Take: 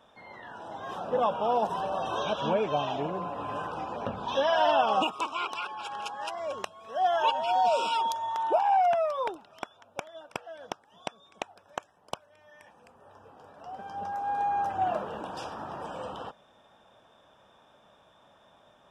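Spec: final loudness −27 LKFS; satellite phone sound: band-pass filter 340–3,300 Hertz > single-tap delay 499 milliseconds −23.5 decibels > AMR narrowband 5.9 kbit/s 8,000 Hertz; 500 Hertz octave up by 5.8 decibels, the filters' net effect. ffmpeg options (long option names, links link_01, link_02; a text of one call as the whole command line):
ffmpeg -i in.wav -af "highpass=340,lowpass=3300,equalizer=frequency=500:width_type=o:gain=8.5,aecho=1:1:499:0.0668" -ar 8000 -c:a libopencore_amrnb -b:a 5900 out.amr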